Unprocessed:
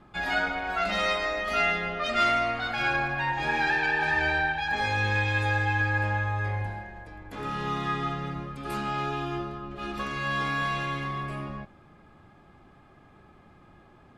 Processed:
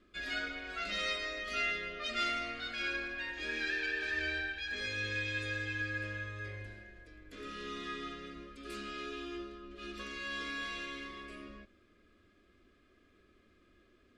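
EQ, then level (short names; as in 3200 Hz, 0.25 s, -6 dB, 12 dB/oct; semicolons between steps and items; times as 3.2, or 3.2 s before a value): air absorption 68 m; high shelf 3400 Hz +11 dB; fixed phaser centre 350 Hz, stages 4; -8.0 dB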